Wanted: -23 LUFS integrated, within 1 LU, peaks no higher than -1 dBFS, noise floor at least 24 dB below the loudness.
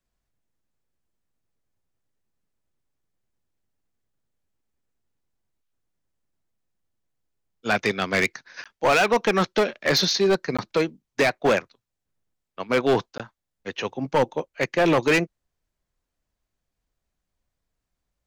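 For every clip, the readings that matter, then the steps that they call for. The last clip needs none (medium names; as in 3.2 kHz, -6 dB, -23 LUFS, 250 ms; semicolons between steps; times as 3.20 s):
clipped samples 1.1%; clipping level -14.5 dBFS; dropouts 3; longest dropout 16 ms; loudness -22.5 LUFS; peak level -14.5 dBFS; loudness target -23.0 LUFS
-> clip repair -14.5 dBFS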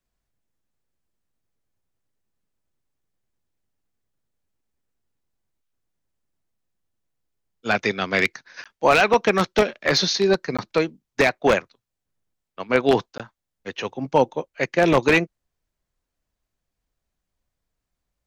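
clipped samples 0.0%; dropouts 3; longest dropout 16 ms
-> interpolate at 8.64/10.57/13.18 s, 16 ms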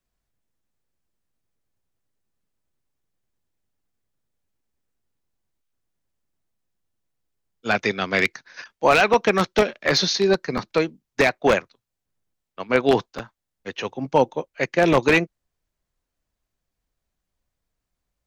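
dropouts 0; loudness -21.0 LUFS; peak level -5.5 dBFS; loudness target -23.0 LUFS
-> trim -2 dB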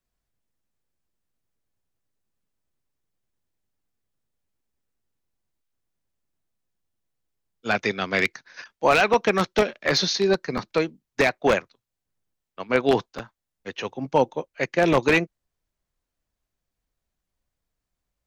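loudness -23.0 LUFS; peak level -7.5 dBFS; noise floor -84 dBFS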